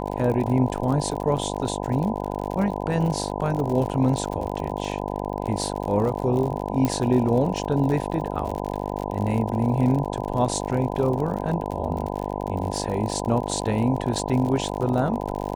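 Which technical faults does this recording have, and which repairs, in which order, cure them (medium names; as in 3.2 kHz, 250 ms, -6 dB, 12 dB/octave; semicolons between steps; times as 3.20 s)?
buzz 50 Hz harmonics 20 -29 dBFS
crackle 58 per s -29 dBFS
6.85 s: pop -10 dBFS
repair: de-click; de-hum 50 Hz, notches 20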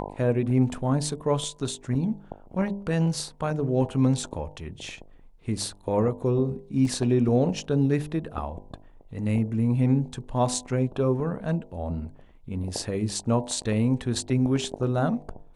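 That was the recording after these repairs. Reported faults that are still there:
6.85 s: pop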